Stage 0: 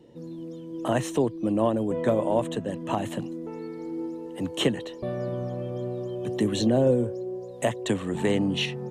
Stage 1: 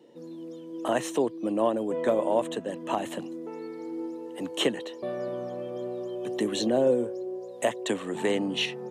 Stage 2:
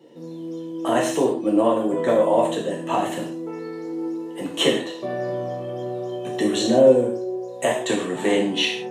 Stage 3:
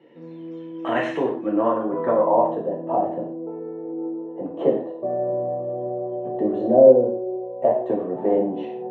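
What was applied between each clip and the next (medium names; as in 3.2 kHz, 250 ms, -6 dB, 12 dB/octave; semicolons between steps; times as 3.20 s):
high-pass 290 Hz 12 dB/octave
gated-style reverb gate 190 ms falling, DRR -3 dB; trim +2 dB
low-pass sweep 2.2 kHz -> 660 Hz, 1.06–2.91 s; trim -3.5 dB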